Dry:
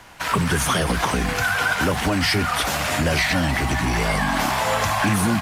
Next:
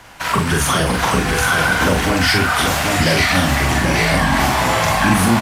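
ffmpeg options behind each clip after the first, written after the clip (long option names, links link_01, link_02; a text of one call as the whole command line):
ffmpeg -i in.wav -filter_complex "[0:a]asplit=2[link_01][link_02];[link_02]adelay=43,volume=-3dB[link_03];[link_01][link_03]amix=inputs=2:normalize=0,aecho=1:1:785:0.596,volume=2.5dB" out.wav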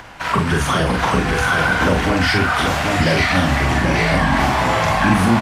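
ffmpeg -i in.wav -af "aemphasis=mode=reproduction:type=50kf,acompressor=mode=upward:threshold=-33dB:ratio=2.5" out.wav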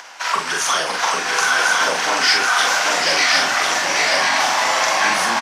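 ffmpeg -i in.wav -af "highpass=670,equalizer=frequency=5800:width=1.5:gain=11.5,aecho=1:1:1050:0.596" out.wav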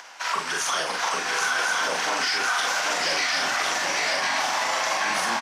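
ffmpeg -i in.wav -af "alimiter=limit=-9.5dB:level=0:latency=1:release=36,volume=-5.5dB" out.wav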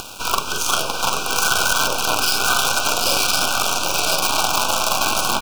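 ffmpeg -i in.wav -af "acrusher=bits=4:dc=4:mix=0:aa=0.000001,acompressor=mode=upward:threshold=-33dB:ratio=2.5,asuperstop=centerf=1900:order=20:qfactor=2.4,volume=8dB" out.wav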